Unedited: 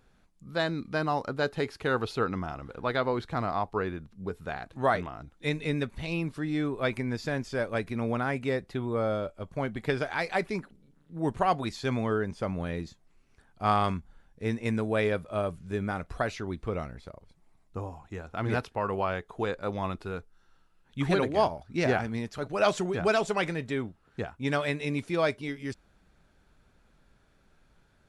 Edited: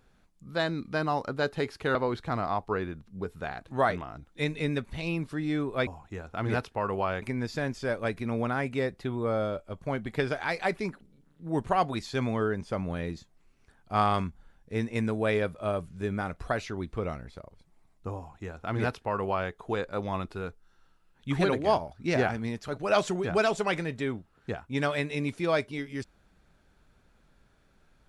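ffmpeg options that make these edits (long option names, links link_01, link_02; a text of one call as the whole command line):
ffmpeg -i in.wav -filter_complex "[0:a]asplit=4[link_01][link_02][link_03][link_04];[link_01]atrim=end=1.952[link_05];[link_02]atrim=start=2.998:end=6.922[link_06];[link_03]atrim=start=17.868:end=19.222[link_07];[link_04]atrim=start=6.918[link_08];[link_05][link_06]acrossfade=duration=0.004:curve1=hsin:curve2=hsin[link_09];[link_09][link_07]acrossfade=duration=0.004:curve1=hsin:curve2=hsin[link_10];[link_10][link_08]acrossfade=duration=0.004:curve1=hsin:curve2=hsin" out.wav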